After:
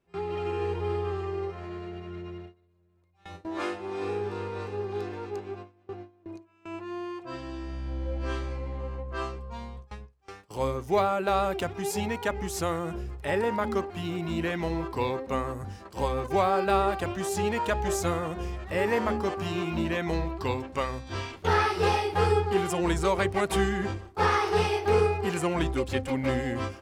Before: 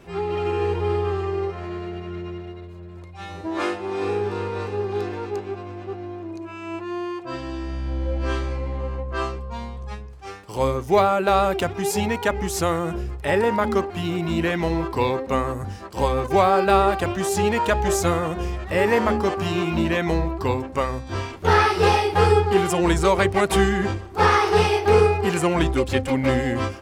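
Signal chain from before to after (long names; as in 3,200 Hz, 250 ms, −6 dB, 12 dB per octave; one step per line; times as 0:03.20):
noise gate with hold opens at −25 dBFS
0:20.13–0:21.48: parametric band 3,500 Hz +5.5 dB 1.9 octaves
level −7 dB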